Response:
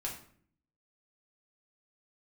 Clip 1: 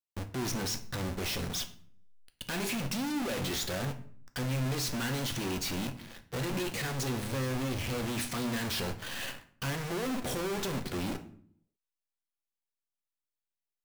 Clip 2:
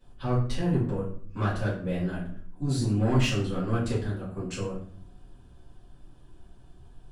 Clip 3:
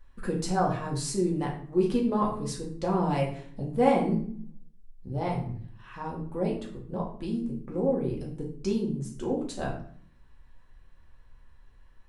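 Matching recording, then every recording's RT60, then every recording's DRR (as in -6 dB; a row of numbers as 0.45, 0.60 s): 3; 0.55, 0.55, 0.55 s; 7.0, -11.0, -3.0 dB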